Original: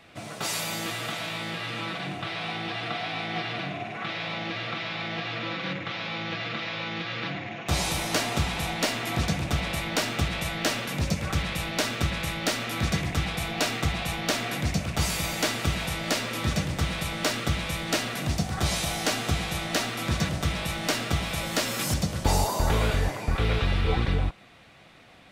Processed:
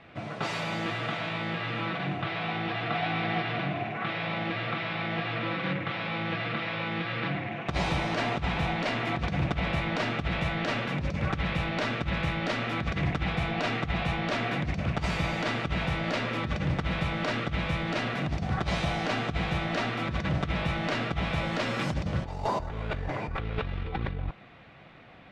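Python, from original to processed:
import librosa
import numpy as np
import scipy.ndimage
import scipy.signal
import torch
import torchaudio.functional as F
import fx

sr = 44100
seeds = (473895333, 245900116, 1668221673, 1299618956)

y = fx.echo_throw(x, sr, start_s=2.38, length_s=0.43, ms=540, feedback_pct=40, wet_db=-4.5)
y = scipy.signal.sosfilt(scipy.signal.butter(2, 2600.0, 'lowpass', fs=sr, output='sos'), y)
y = fx.peak_eq(y, sr, hz=140.0, db=3.0, octaves=0.56)
y = fx.over_compress(y, sr, threshold_db=-27.0, ratio=-0.5)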